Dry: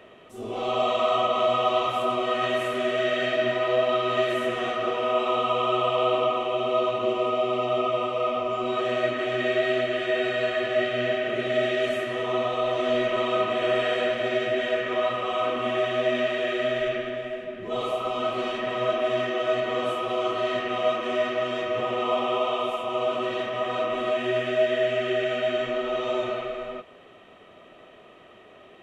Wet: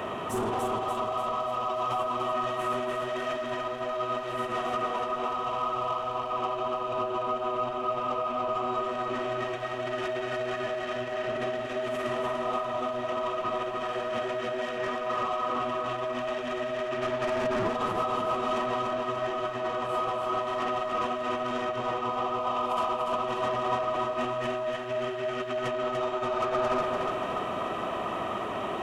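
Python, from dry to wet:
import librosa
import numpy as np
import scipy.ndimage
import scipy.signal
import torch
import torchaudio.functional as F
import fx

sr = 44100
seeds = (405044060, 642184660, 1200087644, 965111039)

p1 = fx.tracing_dist(x, sr, depth_ms=0.021)
p2 = scipy.signal.sosfilt(scipy.signal.butter(2, 47.0, 'highpass', fs=sr, output='sos'), p1)
p3 = 10.0 ** (-21.0 / 20.0) * (np.abs((p2 / 10.0 ** (-21.0 / 20.0) + 3.0) % 4.0 - 2.0) - 1.0)
p4 = p2 + (p3 * 10.0 ** (-7.5 / 20.0))
p5 = fx.over_compress(p4, sr, threshold_db=-34.0, ratio=-1.0)
p6 = 10.0 ** (-29.5 / 20.0) * np.tanh(p5 / 10.0 ** (-29.5 / 20.0))
p7 = fx.graphic_eq(p6, sr, hz=(500, 1000, 2000, 4000), db=(-6, 8, -6, -6))
p8 = p7 + fx.echo_feedback(p7, sr, ms=292, feedback_pct=52, wet_db=-4.5, dry=0)
y = p8 * 10.0 ** (5.0 / 20.0)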